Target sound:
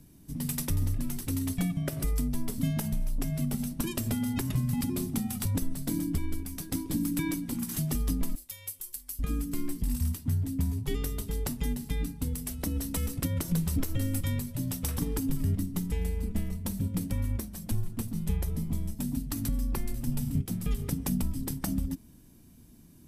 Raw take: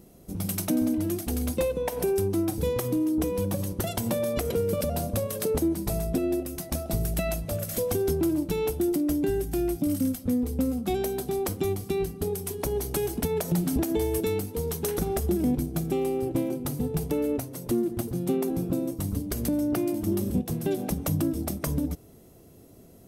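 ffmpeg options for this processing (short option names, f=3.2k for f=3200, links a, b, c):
-filter_complex "[0:a]asettb=1/sr,asplit=3[a][b][c];[a]atrim=end=8.354[d];[b]atrim=start=8.35:end=9.19,asetpts=PTS-STARTPTS,afade=t=in:d=0.004:c=qsin,afade=t=out:st=0.836:d=0.004:c=qsin,aderivative[e];[c]atrim=start=9.186[f];[d][e]acrossfade=d=0.004:c1=hsin:c2=qsin[g];[g][f]acrossfade=d=0.004:c1=qsin:c2=hsin,afreqshift=-340,volume=-2.5dB"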